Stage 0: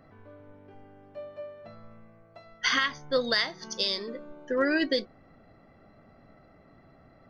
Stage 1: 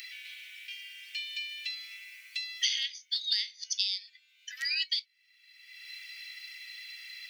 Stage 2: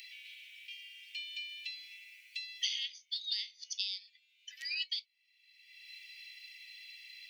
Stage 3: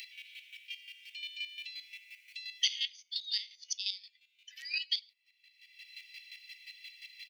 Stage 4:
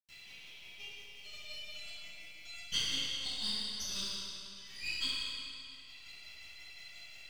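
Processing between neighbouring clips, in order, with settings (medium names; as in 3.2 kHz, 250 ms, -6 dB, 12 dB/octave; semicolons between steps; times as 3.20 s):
steep high-pass 2.3 kHz 48 dB/octave; three bands compressed up and down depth 100%; trim +3 dB
ladder high-pass 2.1 kHz, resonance 40%; trim -1 dB
echo from a far wall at 17 m, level -21 dB; square tremolo 5.7 Hz, depth 65%, duty 25%; trim +5.5 dB
partial rectifier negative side -7 dB; reverberation RT60 2.6 s, pre-delay 87 ms; trim -1.5 dB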